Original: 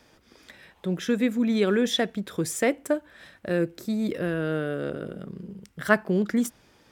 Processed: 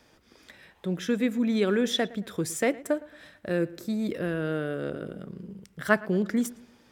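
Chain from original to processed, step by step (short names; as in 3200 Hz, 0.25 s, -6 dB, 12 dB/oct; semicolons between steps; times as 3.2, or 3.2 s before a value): darkening echo 0.112 s, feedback 43%, low-pass 3500 Hz, level -20 dB; gain -2 dB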